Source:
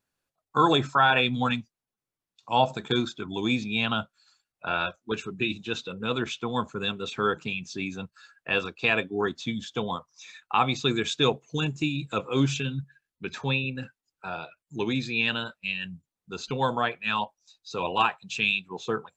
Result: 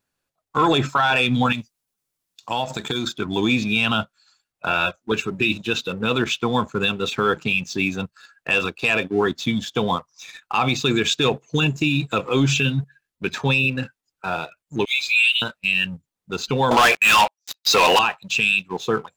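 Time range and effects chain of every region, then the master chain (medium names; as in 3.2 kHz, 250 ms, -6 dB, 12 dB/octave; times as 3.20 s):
1.52–3.08 s: treble shelf 3.8 kHz +11 dB + compression, threshold -29 dBFS
14.85–15.42 s: brick-wall FIR high-pass 2.1 kHz + comb 5.2 ms, depth 87%
16.71–17.99 s: high-pass 870 Hz 6 dB/octave + waveshaping leveller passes 5
whole clip: dynamic bell 2.7 kHz, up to +6 dB, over -41 dBFS, Q 4.8; waveshaping leveller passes 1; peak limiter -15.5 dBFS; trim +5.5 dB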